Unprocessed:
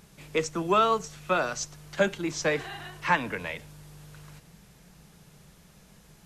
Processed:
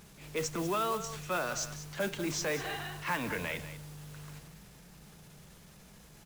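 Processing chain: transient shaper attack -8 dB, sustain +3 dB; compression 5:1, threshold -30 dBFS, peak gain reduction 10 dB; modulation noise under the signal 15 dB; on a send: delay 193 ms -12.5 dB

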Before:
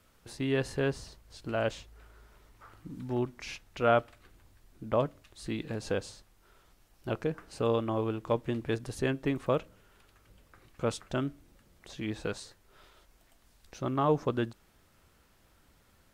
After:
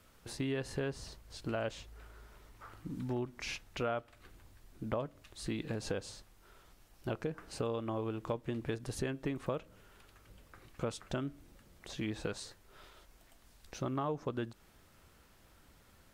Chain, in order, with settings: compression 5:1, threshold -35 dBFS, peak gain reduction 14 dB; trim +1.5 dB

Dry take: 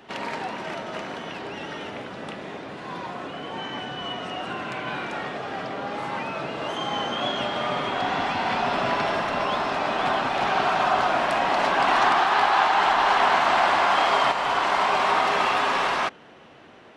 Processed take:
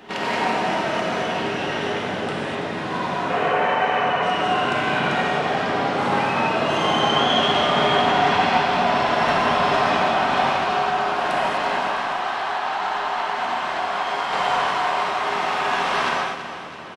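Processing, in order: time-frequency box 3.30–4.22 s, 400–2800 Hz +11 dB; compressor with a negative ratio -27 dBFS, ratio -1; on a send: feedback delay 330 ms, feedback 52%, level -11.5 dB; on the sum: gated-style reverb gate 280 ms flat, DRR -4 dB

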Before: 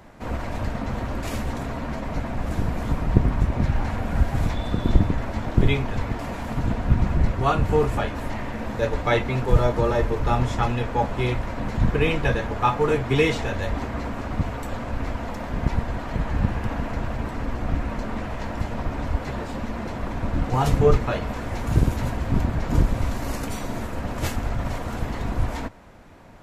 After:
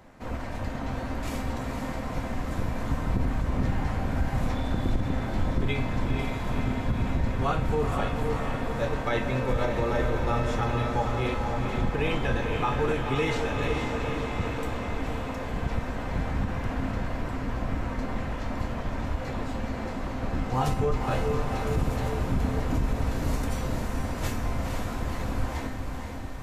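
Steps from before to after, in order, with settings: echo that smears into a reverb 496 ms, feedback 67%, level -5.5 dB; peak limiter -11.5 dBFS, peak gain reduction 9 dB; feedback comb 260 Hz, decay 0.81 s, mix 80%; trim +8 dB

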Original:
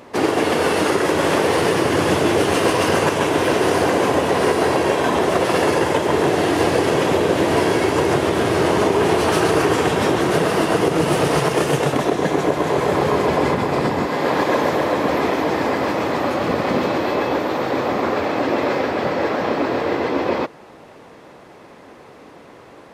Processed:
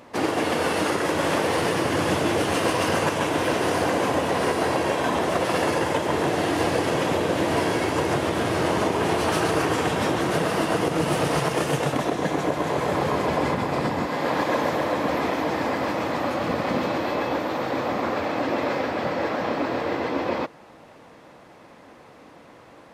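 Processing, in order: peaking EQ 400 Hz -7 dB 0.24 oct; trim -4.5 dB

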